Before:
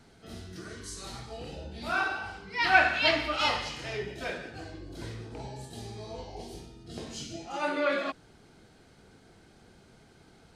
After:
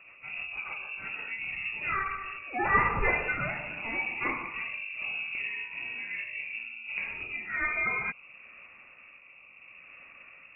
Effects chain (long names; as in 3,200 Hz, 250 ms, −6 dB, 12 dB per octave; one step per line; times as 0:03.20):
downward compressor 2 to 1, threshold −31 dBFS, peak gain reduction 9 dB
rotating-speaker cabinet horn 6.7 Hz, later 0.7 Hz, at 0:00.78
voice inversion scrambler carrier 2,700 Hz
level +6.5 dB